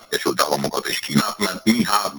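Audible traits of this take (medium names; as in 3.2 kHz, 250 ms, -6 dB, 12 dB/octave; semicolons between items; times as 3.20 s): a buzz of ramps at a fixed pitch in blocks of 8 samples; chopped level 7.8 Hz, depth 65%, duty 30%; a shimmering, thickened sound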